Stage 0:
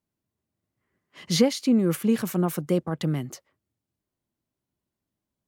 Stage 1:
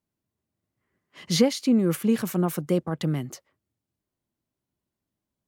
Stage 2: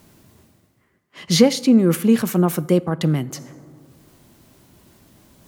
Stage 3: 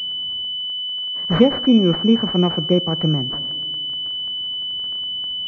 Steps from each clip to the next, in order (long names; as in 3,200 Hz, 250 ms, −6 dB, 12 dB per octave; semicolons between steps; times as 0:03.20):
no processing that can be heard
dense smooth reverb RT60 1.1 s, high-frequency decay 0.5×, DRR 17.5 dB; reversed playback; upward compression, threshold −36 dBFS; reversed playback; level +6.5 dB
surface crackle 52 per second −29 dBFS; switching amplifier with a slow clock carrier 3,000 Hz